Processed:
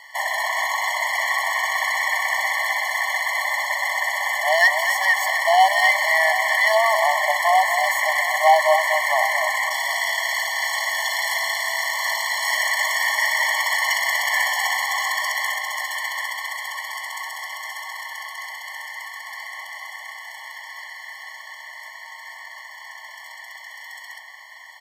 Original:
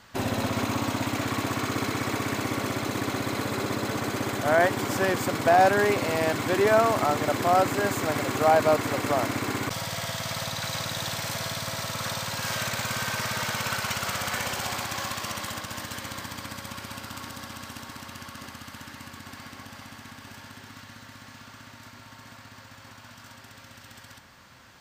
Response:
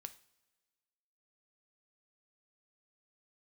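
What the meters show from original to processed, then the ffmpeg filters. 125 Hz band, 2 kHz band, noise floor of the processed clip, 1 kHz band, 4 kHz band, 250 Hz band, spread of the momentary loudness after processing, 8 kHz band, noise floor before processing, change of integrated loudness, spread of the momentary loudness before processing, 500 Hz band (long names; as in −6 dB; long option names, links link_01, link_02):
below −40 dB, +12.5 dB, −40 dBFS, +6.5 dB, +6.5 dB, below −40 dB, 20 LU, +5.0 dB, −49 dBFS, +6.5 dB, 23 LU, 0.0 dB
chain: -filter_complex "[0:a]superequalizer=8b=0.562:11b=3.16,asplit=2[link_01][link_02];[link_02]adelay=240,highpass=300,lowpass=3400,asoftclip=type=hard:threshold=-18dB,volume=-7dB[link_03];[link_01][link_03]amix=inputs=2:normalize=0,asoftclip=type=hard:threshold=-16dB,asplit=2[link_04][link_05];[link_05]aecho=0:1:749:0.188[link_06];[link_04][link_06]amix=inputs=2:normalize=0,afftfilt=real='re*eq(mod(floor(b*sr/1024/580),2),1)':imag='im*eq(mod(floor(b*sr/1024/580),2),1)':win_size=1024:overlap=0.75,volume=8.5dB"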